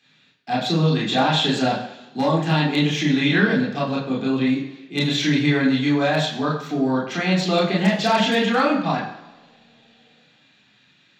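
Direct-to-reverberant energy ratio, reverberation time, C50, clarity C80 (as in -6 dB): -4.0 dB, 1.3 s, 5.5 dB, 8.5 dB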